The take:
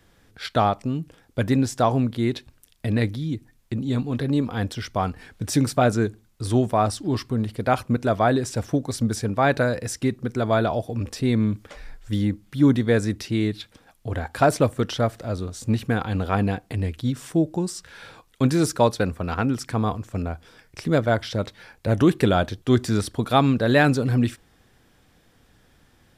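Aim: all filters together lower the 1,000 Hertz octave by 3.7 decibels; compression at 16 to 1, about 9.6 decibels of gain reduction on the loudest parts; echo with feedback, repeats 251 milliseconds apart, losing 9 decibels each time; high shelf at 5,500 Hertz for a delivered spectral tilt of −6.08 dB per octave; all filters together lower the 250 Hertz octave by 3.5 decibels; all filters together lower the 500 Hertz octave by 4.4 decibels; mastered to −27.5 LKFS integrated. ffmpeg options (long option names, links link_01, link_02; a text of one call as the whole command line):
ffmpeg -i in.wav -af "equalizer=frequency=250:width_type=o:gain=-3,equalizer=frequency=500:width_type=o:gain=-4,equalizer=frequency=1000:width_type=o:gain=-3,highshelf=frequency=5500:gain=-7,acompressor=threshold=-25dB:ratio=16,aecho=1:1:251|502|753|1004:0.355|0.124|0.0435|0.0152,volume=4dB" out.wav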